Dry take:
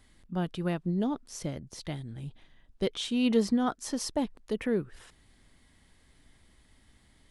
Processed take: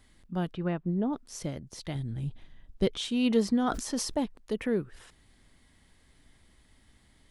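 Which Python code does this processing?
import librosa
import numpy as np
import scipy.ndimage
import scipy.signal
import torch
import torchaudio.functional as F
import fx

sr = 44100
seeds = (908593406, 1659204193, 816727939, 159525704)

y = fx.lowpass(x, sr, hz=fx.line((0.53, 2900.0), (1.12, 1500.0)), slope=12, at=(0.53, 1.12), fade=0.02)
y = fx.low_shelf(y, sr, hz=230.0, db=8.5, at=(1.95, 2.98))
y = fx.sustainer(y, sr, db_per_s=70.0, at=(3.51, 4.18))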